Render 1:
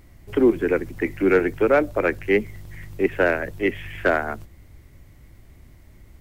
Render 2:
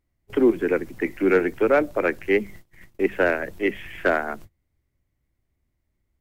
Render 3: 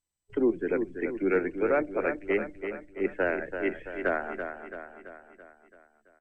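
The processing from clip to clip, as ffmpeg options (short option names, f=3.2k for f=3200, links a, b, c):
-af "bandreject=f=50:t=h:w=6,bandreject=f=100:t=h:w=6,bandreject=f=150:t=h:w=6,bandreject=f=200:t=h:w=6,agate=range=-24dB:threshold=-38dB:ratio=16:detection=peak,volume=-1dB"
-filter_complex "[0:a]afftdn=nr=14:nf=-33,asplit=2[a][b];[b]aecho=0:1:334|668|1002|1336|1670|2004:0.398|0.215|0.116|0.0627|0.0339|0.0183[c];[a][c]amix=inputs=2:normalize=0,volume=-7dB" -ar 32000 -c:a mp2 -b:a 128k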